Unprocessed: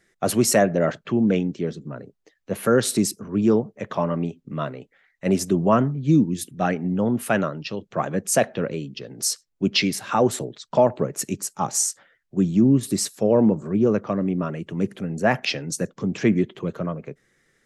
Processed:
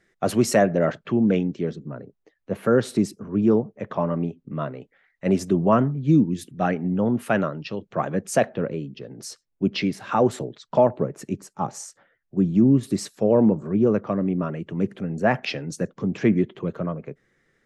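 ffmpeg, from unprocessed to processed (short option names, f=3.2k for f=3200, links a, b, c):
-af "asetnsamples=n=441:p=0,asendcmd='1.76 lowpass f 1500;4.75 lowpass f 2800;8.49 lowpass f 1300;10 lowpass f 2500;10.89 lowpass f 1100;12.55 lowpass f 2400',lowpass=f=3.4k:p=1"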